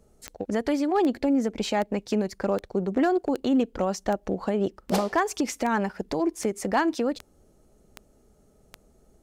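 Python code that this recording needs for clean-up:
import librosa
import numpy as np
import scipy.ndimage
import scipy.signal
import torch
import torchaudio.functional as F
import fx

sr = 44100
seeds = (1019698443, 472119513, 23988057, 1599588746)

y = fx.fix_declip(x, sr, threshold_db=-14.5)
y = fx.fix_declick_ar(y, sr, threshold=10.0)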